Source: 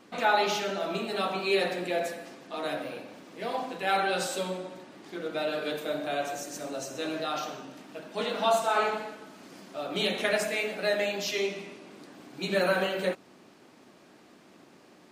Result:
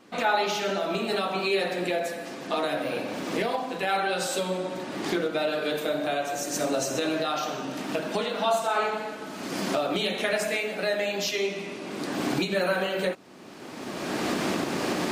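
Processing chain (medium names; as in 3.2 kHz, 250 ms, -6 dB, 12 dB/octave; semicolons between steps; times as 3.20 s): recorder AGC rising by 25 dB/s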